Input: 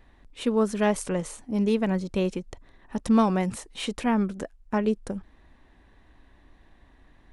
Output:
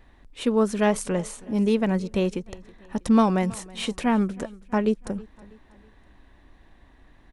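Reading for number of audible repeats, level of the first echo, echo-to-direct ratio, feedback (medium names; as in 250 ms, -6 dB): 2, -22.0 dB, -21.0 dB, 43%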